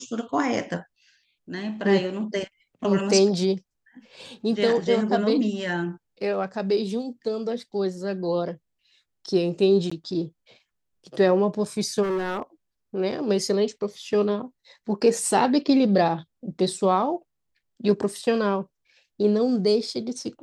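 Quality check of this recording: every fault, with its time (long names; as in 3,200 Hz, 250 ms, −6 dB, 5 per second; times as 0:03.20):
0:09.90–0:09.91: drop-out 15 ms
0:12.02–0:12.42: clipping −23 dBFS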